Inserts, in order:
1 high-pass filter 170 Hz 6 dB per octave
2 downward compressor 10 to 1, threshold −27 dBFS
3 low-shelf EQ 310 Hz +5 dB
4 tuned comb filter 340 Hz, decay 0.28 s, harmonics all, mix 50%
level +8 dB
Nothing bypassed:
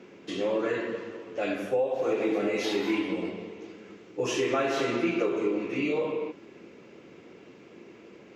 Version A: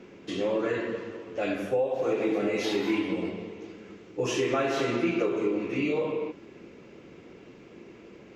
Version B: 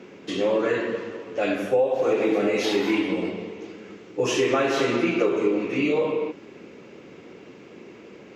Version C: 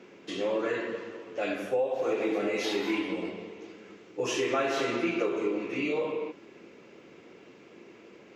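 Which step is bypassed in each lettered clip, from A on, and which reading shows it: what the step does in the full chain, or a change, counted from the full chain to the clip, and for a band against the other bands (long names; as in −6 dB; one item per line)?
1, 125 Hz band +3.5 dB
4, change in integrated loudness +5.5 LU
3, 125 Hz band −3.5 dB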